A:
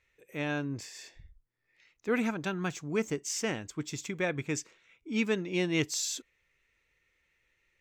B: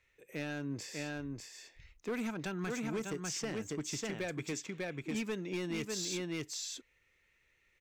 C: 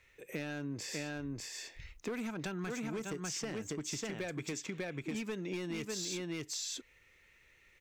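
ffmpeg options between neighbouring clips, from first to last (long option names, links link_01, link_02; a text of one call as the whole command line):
ffmpeg -i in.wav -filter_complex "[0:a]aecho=1:1:596:0.562,acrossover=split=150|6100[link_01][link_02][link_03];[link_01]acompressor=threshold=-50dB:ratio=4[link_04];[link_02]acompressor=threshold=-34dB:ratio=4[link_05];[link_03]acompressor=threshold=-49dB:ratio=4[link_06];[link_04][link_05][link_06]amix=inputs=3:normalize=0,asoftclip=type=hard:threshold=-31dB" out.wav
ffmpeg -i in.wav -af "acompressor=threshold=-44dB:ratio=6,volume=7.5dB" out.wav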